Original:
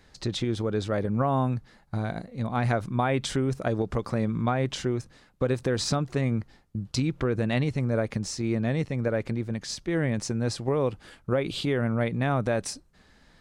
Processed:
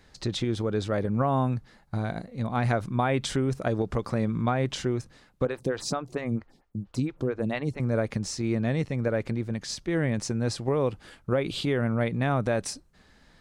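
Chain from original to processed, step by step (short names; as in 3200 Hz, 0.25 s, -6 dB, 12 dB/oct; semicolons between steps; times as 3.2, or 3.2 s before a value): 5.45–7.8 photocell phaser 4.4 Hz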